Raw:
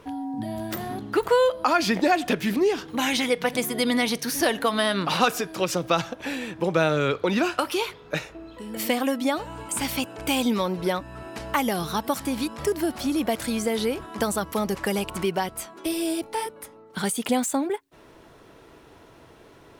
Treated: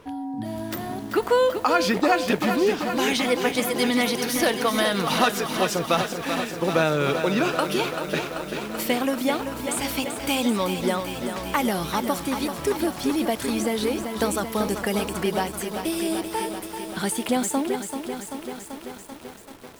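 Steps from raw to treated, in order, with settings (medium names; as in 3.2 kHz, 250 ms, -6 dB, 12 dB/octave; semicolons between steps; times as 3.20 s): bit-crushed delay 387 ms, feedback 80%, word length 7-bit, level -7.5 dB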